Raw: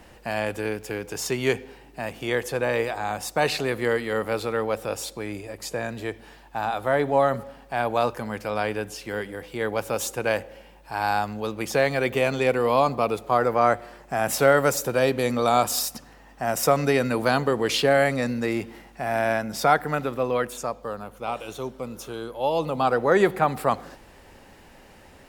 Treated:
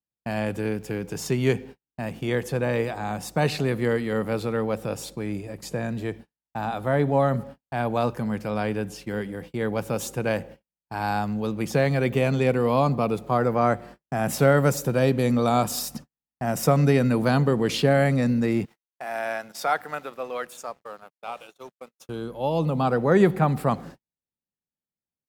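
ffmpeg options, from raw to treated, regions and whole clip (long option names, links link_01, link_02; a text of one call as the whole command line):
ffmpeg -i in.wav -filter_complex "[0:a]asettb=1/sr,asplit=3[link_01][link_02][link_03];[link_01]atrim=end=18.654[link_04];[link_02]atrim=start=18.65:end=22.09,asetpts=PTS-STARTPTS,afade=type=in:duration=0.004:curve=qsin,afade=type=out:start_time=3.436:duration=0.004:curve=qsin,highpass=660,bandreject=frequency=1000:width=26,aeval=exprs='sgn(val(0))*max(abs(val(0))-0.00266,0)':channel_layout=same[link_05];[link_03]atrim=start=22.086[link_06];[link_04][link_05]acrossfade=duration=0.004:curve1=hsin:curve2=qsin[link_07];[link_07][link_06]acrossfade=duration=0.004:curve1=qsin:curve2=hsin,agate=range=-52dB:threshold=-40dB:ratio=16:detection=peak,equalizer=frequency=160:width_type=o:width=1.7:gain=14,volume=-4dB" out.wav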